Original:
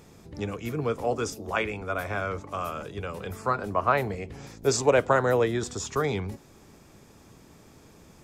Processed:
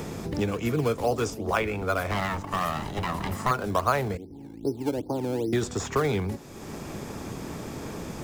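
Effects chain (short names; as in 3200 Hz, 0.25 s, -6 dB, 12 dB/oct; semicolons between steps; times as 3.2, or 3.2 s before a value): 2.11–3.51 minimum comb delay 1 ms; 4.17–5.53 vocal tract filter u; in parallel at -10 dB: decimation with a swept rate 16×, swing 100% 2.5 Hz; on the sum: three-band squash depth 70%; gain +1.5 dB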